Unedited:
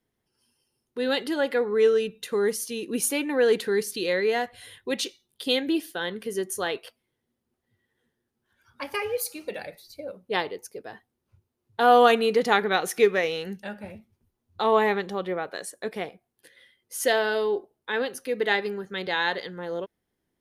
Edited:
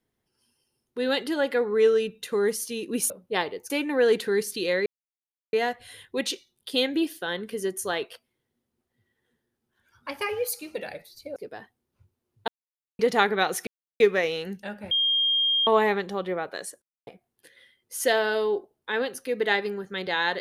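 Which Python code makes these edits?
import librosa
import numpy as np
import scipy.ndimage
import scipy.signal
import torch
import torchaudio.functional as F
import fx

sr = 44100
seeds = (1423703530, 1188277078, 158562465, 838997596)

y = fx.edit(x, sr, fx.insert_silence(at_s=4.26, length_s=0.67),
    fx.move(start_s=10.09, length_s=0.6, to_s=3.1),
    fx.silence(start_s=11.81, length_s=0.51),
    fx.insert_silence(at_s=13.0, length_s=0.33),
    fx.bleep(start_s=13.91, length_s=0.76, hz=3220.0, db=-20.0),
    fx.silence(start_s=15.82, length_s=0.25), tone=tone)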